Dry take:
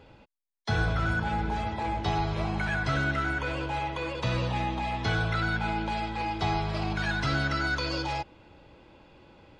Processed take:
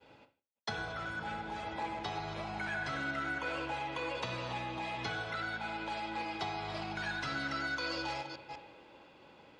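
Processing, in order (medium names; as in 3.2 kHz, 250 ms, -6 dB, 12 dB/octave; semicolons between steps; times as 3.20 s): chunks repeated in reverse 199 ms, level -11 dB; compression 4:1, threshold -33 dBFS, peak gain reduction 10 dB; high-pass 370 Hz 6 dB/octave; spring tank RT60 1 s, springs 40/47/58 ms, chirp 35 ms, DRR 7.5 dB; expander -54 dBFS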